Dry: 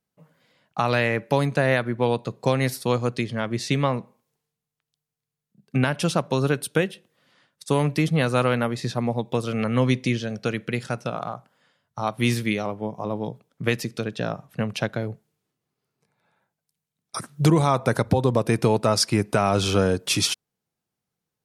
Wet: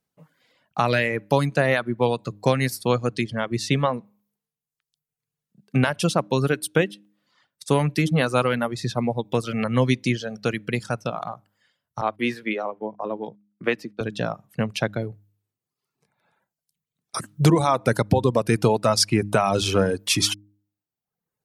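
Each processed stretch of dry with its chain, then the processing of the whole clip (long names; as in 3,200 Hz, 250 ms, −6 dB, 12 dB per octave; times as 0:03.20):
0:12.01–0:14.01: noise gate −40 dBFS, range −20 dB + three-way crossover with the lows and the highs turned down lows −24 dB, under 210 Hz, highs −19 dB, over 3,200 Hz
whole clip: reverb reduction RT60 0.93 s; hum removal 102.4 Hz, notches 3; level +2 dB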